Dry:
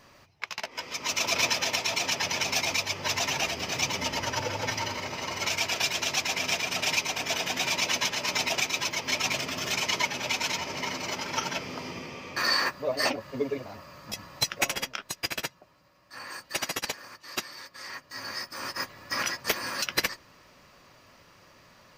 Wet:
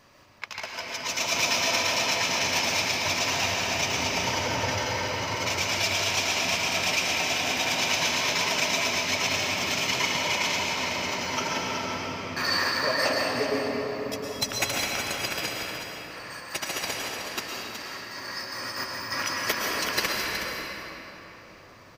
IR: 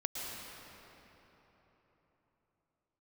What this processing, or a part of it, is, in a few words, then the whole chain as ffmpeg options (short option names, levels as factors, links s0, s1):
cave: -filter_complex "[0:a]aecho=1:1:370:0.398[s0];[1:a]atrim=start_sample=2205[s1];[s0][s1]afir=irnorm=-1:irlink=0"